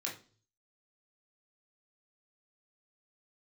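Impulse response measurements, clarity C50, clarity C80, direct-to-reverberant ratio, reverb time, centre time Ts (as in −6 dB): 8.5 dB, 15.0 dB, −3.5 dB, 0.40 s, 24 ms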